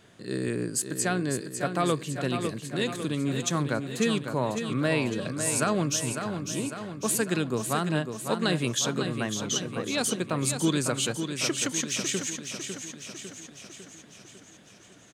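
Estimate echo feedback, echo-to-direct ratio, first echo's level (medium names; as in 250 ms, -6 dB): 57%, -6.0 dB, -7.5 dB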